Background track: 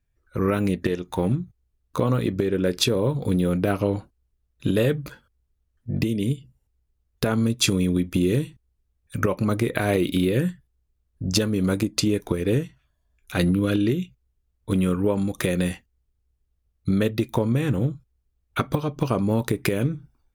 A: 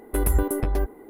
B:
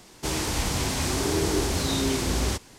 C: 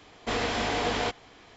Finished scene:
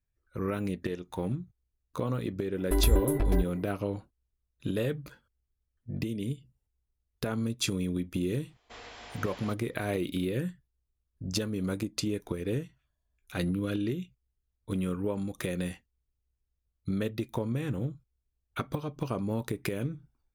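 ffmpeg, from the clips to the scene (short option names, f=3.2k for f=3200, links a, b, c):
-filter_complex "[0:a]volume=-9.5dB[a];[1:a]aecho=1:1:3:0.76[b];[3:a]equalizer=f=200:w=0.57:g=-9[c];[b]atrim=end=1.09,asetpts=PTS-STARTPTS,volume=-6dB,afade=t=in:d=0.004:c=hsin,afade=t=out:st=1.086:d=0.004:c=hsin,adelay=2570[d];[c]atrim=end=1.56,asetpts=PTS-STARTPTS,volume=-16.5dB,afade=t=in:d=0.004:c=hsin,afade=t=out:st=1.556:d=0.004:c=hsin,adelay=8430[e];[a][d][e]amix=inputs=3:normalize=0"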